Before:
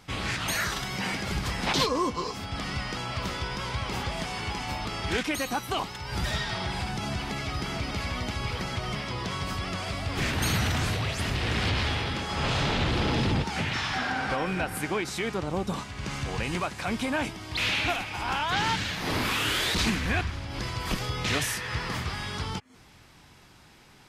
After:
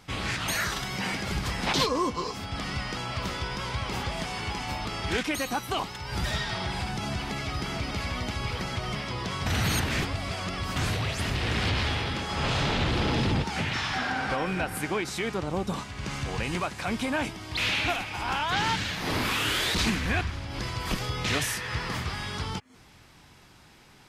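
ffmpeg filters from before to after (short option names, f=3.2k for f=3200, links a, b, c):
-filter_complex "[0:a]asplit=3[a][b][c];[a]atrim=end=9.462[d];[b]atrim=start=9.458:end=10.762,asetpts=PTS-STARTPTS,areverse[e];[c]atrim=start=10.758[f];[d][e]acrossfade=d=0.004:c1=hsin:c2=hsin[g];[g][f]acrossfade=d=0.004:c1=hsin:c2=hsin"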